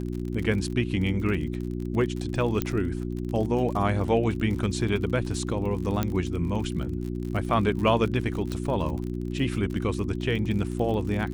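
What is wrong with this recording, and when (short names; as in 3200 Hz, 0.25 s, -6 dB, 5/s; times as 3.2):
crackle 40/s -32 dBFS
hum 60 Hz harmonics 6 -31 dBFS
2.62 pop -11 dBFS
6.03 pop -12 dBFS
8.52 pop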